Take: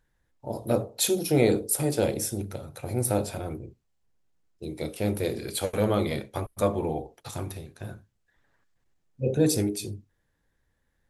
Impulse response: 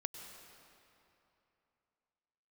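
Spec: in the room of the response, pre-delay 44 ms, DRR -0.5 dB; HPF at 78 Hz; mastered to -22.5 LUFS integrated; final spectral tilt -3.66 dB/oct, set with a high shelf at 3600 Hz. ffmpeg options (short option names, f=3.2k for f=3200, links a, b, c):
-filter_complex "[0:a]highpass=78,highshelf=f=3.6k:g=8,asplit=2[a][b];[1:a]atrim=start_sample=2205,adelay=44[c];[b][c]afir=irnorm=-1:irlink=0,volume=2dB[d];[a][d]amix=inputs=2:normalize=0"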